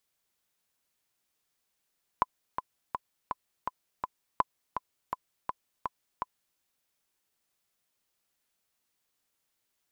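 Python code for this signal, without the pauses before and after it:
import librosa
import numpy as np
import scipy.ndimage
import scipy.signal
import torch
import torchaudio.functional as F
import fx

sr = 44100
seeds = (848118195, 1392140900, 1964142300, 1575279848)

y = fx.click_track(sr, bpm=165, beats=6, bars=2, hz=1010.0, accent_db=8.0, level_db=-10.0)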